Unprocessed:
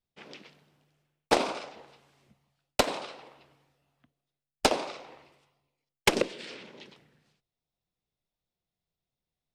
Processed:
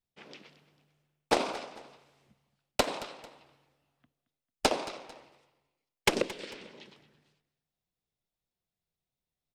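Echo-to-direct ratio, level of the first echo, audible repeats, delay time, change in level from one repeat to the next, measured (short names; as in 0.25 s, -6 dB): -16.5 dB, -17.0 dB, 2, 0.223 s, -8.5 dB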